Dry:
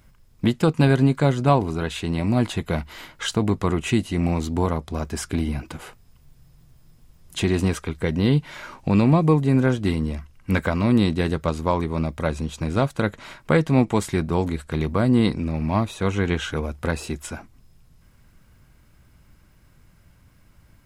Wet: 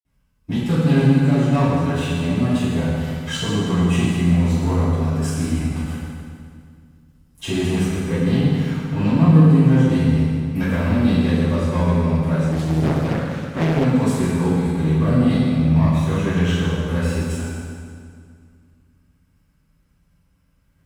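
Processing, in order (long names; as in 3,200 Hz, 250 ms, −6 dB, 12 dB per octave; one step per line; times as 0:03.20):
leveller curve on the samples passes 2
convolution reverb RT60 2.1 s, pre-delay 49 ms
0:12.52–0:13.85: highs frequency-modulated by the lows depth 0.88 ms
level −3 dB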